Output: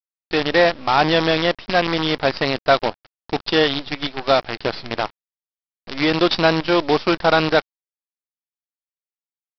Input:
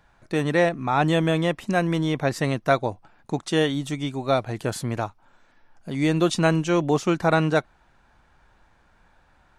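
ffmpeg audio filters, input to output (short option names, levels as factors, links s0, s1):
-af "bass=f=250:g=-12,treble=f=4000:g=8,acontrast=61,aresample=11025,acrusher=bits=4:dc=4:mix=0:aa=0.000001,aresample=44100"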